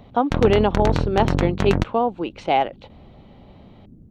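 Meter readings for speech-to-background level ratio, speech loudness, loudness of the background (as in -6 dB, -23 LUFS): 1.5 dB, -22.0 LUFS, -23.5 LUFS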